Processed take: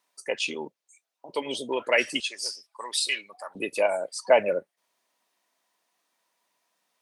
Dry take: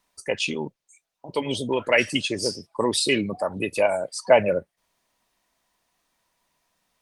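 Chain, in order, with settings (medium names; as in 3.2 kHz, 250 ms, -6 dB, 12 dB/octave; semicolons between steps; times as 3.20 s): high-pass 330 Hz 12 dB/octave, from 2.20 s 1.3 kHz, from 3.55 s 290 Hz; trim -2.5 dB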